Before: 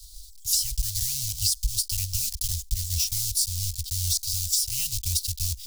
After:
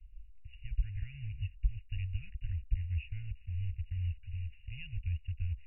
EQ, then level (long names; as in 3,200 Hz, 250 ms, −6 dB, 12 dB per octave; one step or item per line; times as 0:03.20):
linear-phase brick-wall low-pass 2,900 Hz
phaser with its sweep stopped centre 2,000 Hz, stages 4
−3.5 dB